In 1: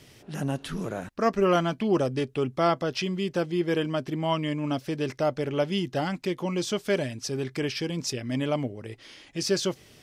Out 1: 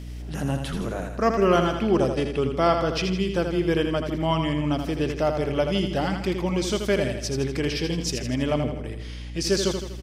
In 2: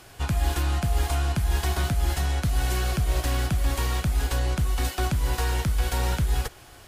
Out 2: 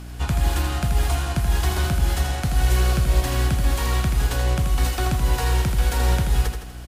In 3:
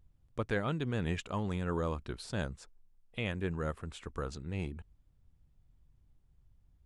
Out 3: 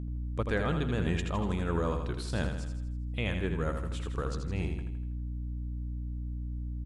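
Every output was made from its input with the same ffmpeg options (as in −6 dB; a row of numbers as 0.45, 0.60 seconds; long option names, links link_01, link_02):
-filter_complex "[0:a]aeval=exprs='val(0)+0.0141*(sin(2*PI*60*n/s)+sin(2*PI*2*60*n/s)/2+sin(2*PI*3*60*n/s)/3+sin(2*PI*4*60*n/s)/4+sin(2*PI*5*60*n/s)/5)':channel_layout=same,asplit=2[link_01][link_02];[link_02]aecho=0:1:81|162|243|324|405|486:0.473|0.241|0.123|0.0628|0.032|0.0163[link_03];[link_01][link_03]amix=inputs=2:normalize=0,volume=2dB"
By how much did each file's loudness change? +3.5, +4.0, +3.0 LU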